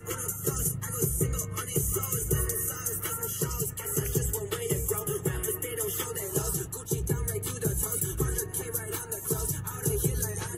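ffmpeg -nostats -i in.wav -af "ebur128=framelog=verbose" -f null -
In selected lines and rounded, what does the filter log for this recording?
Integrated loudness:
  I:         -29.7 LUFS
  Threshold: -39.7 LUFS
Loudness range:
  LRA:         1.4 LU
  Threshold: -49.7 LUFS
  LRA low:   -30.3 LUFS
  LRA high:  -28.9 LUFS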